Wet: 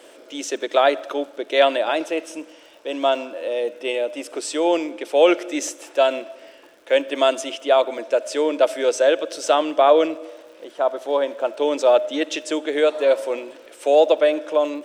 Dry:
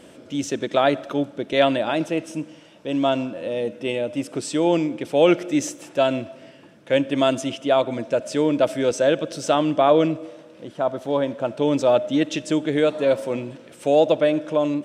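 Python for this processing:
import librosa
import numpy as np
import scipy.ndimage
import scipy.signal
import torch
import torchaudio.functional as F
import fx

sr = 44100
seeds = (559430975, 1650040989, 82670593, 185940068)

y = scipy.signal.sosfilt(scipy.signal.butter(4, 370.0, 'highpass', fs=sr, output='sos'), x)
y = fx.dmg_crackle(y, sr, seeds[0], per_s=110.0, level_db=-46.0)
y = y * librosa.db_to_amplitude(2.5)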